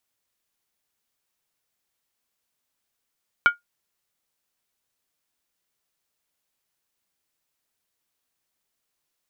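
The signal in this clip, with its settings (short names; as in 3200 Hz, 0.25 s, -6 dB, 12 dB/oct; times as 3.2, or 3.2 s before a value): skin hit, lowest mode 1420 Hz, decay 0.14 s, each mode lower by 9.5 dB, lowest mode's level -8 dB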